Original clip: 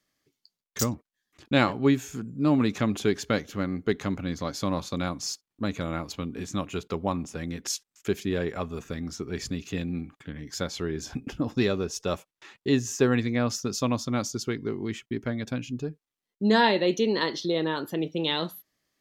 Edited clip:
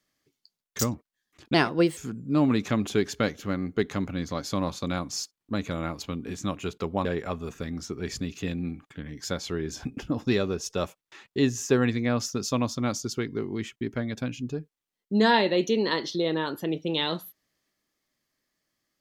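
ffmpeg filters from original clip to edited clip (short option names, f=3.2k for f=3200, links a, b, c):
-filter_complex "[0:a]asplit=4[a][b][c][d];[a]atrim=end=1.544[e];[b]atrim=start=1.54:end=2.07,asetpts=PTS-STARTPTS,asetrate=54243,aresample=44100,atrim=end_sample=19002,asetpts=PTS-STARTPTS[f];[c]atrim=start=2.066:end=7.152[g];[d]atrim=start=8.348[h];[e][f]acrossfade=d=0.004:c1=hsin:c2=hsin[i];[i][g]acrossfade=d=0.004:c1=hsin:c2=hsin[j];[j][h]acrossfade=d=0.004:c1=hsin:c2=hsin"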